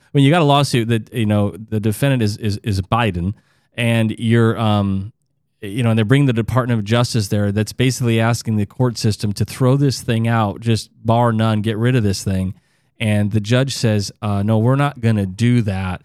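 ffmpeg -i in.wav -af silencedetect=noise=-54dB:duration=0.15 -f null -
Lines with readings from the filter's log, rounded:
silence_start: 5.22
silence_end: 5.62 | silence_duration: 0.40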